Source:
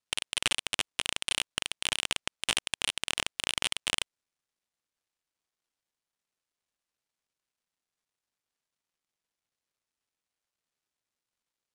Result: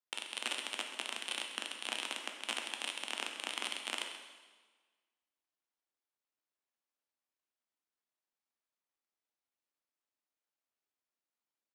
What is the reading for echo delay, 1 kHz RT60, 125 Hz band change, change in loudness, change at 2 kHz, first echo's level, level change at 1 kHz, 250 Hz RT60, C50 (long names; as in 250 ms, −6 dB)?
132 ms, 1.4 s, below −25 dB, −8.0 dB, −7.0 dB, −12.5 dB, −4.0 dB, 1.4 s, 5.0 dB